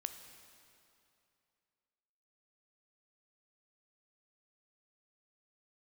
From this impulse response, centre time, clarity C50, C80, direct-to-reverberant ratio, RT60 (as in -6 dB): 29 ms, 9.0 dB, 9.5 dB, 7.5 dB, 2.7 s